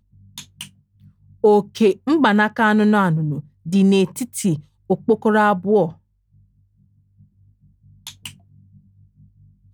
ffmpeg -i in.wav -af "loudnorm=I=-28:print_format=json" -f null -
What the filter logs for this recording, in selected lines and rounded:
"input_i" : "-18.0",
"input_tp" : "-3.5",
"input_lra" : "3.8",
"input_thresh" : "-32.0",